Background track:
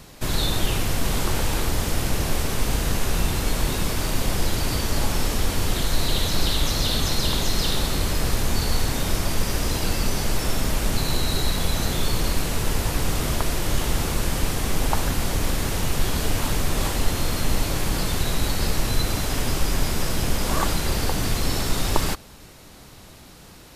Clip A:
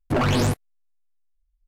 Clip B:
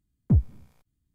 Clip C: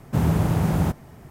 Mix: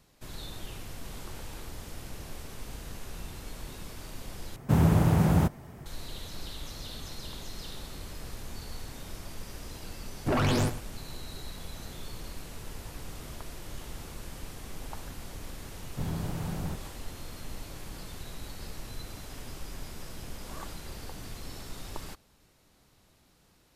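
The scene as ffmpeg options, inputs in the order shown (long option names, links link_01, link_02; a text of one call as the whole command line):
ffmpeg -i bed.wav -i cue0.wav -i cue1.wav -i cue2.wav -filter_complex "[3:a]asplit=2[link_01][link_02];[0:a]volume=-18.5dB[link_03];[1:a]aecho=1:1:103:0.224[link_04];[link_03]asplit=2[link_05][link_06];[link_05]atrim=end=4.564[link_07];[link_01]atrim=end=1.3,asetpts=PTS-STARTPTS,volume=-1.5dB[link_08];[link_06]atrim=start=5.856[link_09];[link_04]atrim=end=1.67,asetpts=PTS-STARTPTS,volume=-5.5dB,afade=type=in:duration=0.004:curve=hsin,afade=type=out:start_time=1.666:duration=0.004:curve=hsin,adelay=10160[link_10];[link_02]atrim=end=1.3,asetpts=PTS-STARTPTS,volume=-14dB,afade=type=in:duration=0.004:curve=hsin,afade=type=out:start_time=1.296:duration=0.004:curve=hsin,adelay=15840[link_11];[link_07][link_08]acrossfade=duration=0.004:curve1=hsin:curve2=hsin[link_12];[link_12][link_09]acrossfade=duration=0.004:curve1=hsin:curve2=hsin[link_13];[link_13][link_10][link_11]amix=inputs=3:normalize=0" out.wav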